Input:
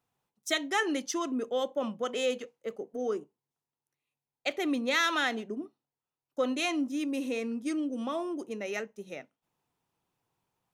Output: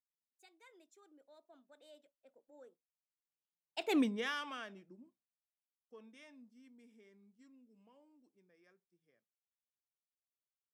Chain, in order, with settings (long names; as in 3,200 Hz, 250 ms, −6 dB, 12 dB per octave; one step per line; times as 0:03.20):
source passing by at 0:03.97, 53 m/s, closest 4 metres
notch filter 4,500 Hz, Q 21